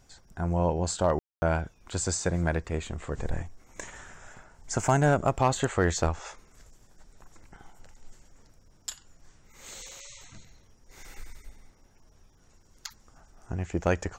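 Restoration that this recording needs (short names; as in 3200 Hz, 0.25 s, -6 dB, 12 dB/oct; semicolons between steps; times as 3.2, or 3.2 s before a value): clip repair -13.5 dBFS; room tone fill 1.19–1.42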